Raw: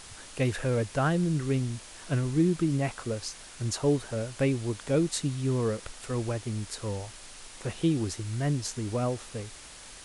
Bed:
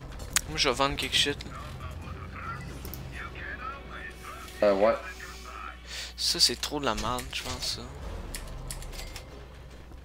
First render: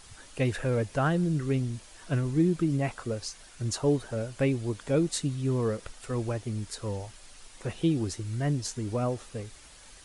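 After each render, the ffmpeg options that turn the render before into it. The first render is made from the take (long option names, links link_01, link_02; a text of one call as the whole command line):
ffmpeg -i in.wav -af "afftdn=noise_reduction=7:noise_floor=-47" out.wav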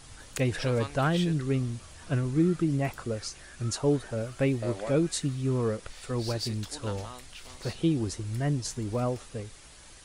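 ffmpeg -i in.wav -i bed.wav -filter_complex "[1:a]volume=-13.5dB[link_01];[0:a][link_01]amix=inputs=2:normalize=0" out.wav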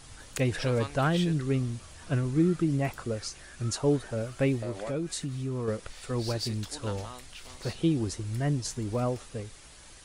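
ffmpeg -i in.wav -filter_complex "[0:a]asettb=1/sr,asplit=3[link_01][link_02][link_03];[link_01]atrim=end=4.624[link_04];[link_02]atrim=start=4.62:end=5.68,asetpts=PTS-STARTPTS,afade=type=in:duration=0.004:curve=qsin,afade=type=out:start_time=1.056:duration=0.004:curve=qsin,acompressor=threshold=-31dB:ratio=2.5:attack=3.2:release=140:knee=1:detection=peak[link_05];[link_03]atrim=start=5.676[link_06];[link_04][link_05]acrossfade=duration=0.004:curve1=hsin:curve2=qsin[link_07];[link_07][link_06]acrossfade=duration=0.004:curve1=qsin:curve2=hsin" out.wav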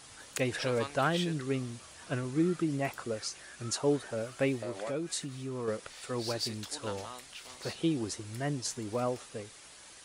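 ffmpeg -i in.wav -af "highpass=frequency=340:poles=1" out.wav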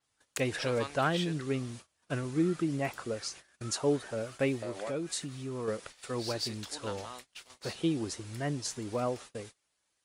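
ffmpeg -i in.wav -af "agate=range=-27dB:threshold=-46dB:ratio=16:detection=peak,adynamicequalizer=threshold=0.00251:dfrequency=6900:dqfactor=0.7:tfrequency=6900:tqfactor=0.7:attack=5:release=100:ratio=0.375:range=2:mode=cutabove:tftype=highshelf" out.wav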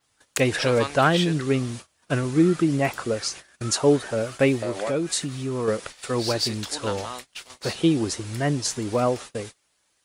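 ffmpeg -i in.wav -af "volume=10dB" out.wav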